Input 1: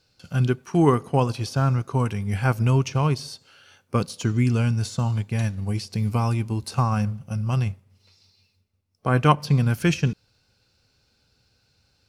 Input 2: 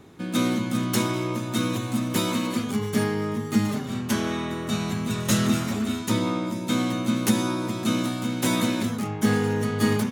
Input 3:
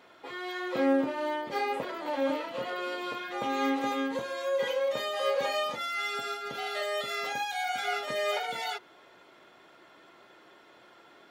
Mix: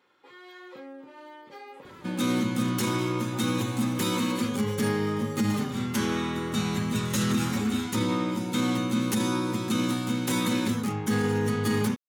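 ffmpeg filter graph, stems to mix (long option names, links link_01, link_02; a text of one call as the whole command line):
ffmpeg -i stem1.wav -i stem2.wav -i stem3.wav -filter_complex "[1:a]adelay=1850,volume=-0.5dB[link_01];[2:a]acompressor=threshold=-31dB:ratio=6,highpass=75,volume=-10dB[link_02];[link_01][link_02]amix=inputs=2:normalize=0,asuperstop=centerf=660:order=4:qfactor=5,alimiter=limit=-17dB:level=0:latency=1:release=23" out.wav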